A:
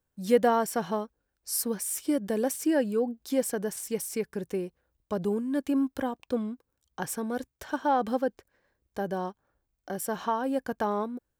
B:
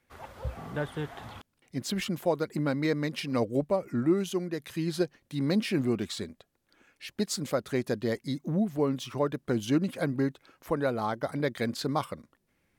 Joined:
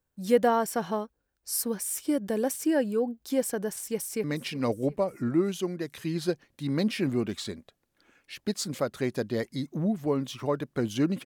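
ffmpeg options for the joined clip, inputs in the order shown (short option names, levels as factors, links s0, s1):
-filter_complex "[0:a]apad=whole_dur=11.25,atrim=end=11.25,atrim=end=4.242[s0];[1:a]atrim=start=2.958:end=9.97[s1];[s0][s1]acrossfade=d=0.004:c1=hsin:c2=hsin,asplit=2[s2][s3];[s3]afade=t=in:st=3.93:d=0.01,afade=t=out:st=4.24:d=0.01,aecho=0:1:360|720|1080|1440|1800:0.133352|0.0733437|0.040339|0.0221865|0.0122026[s4];[s2][s4]amix=inputs=2:normalize=0"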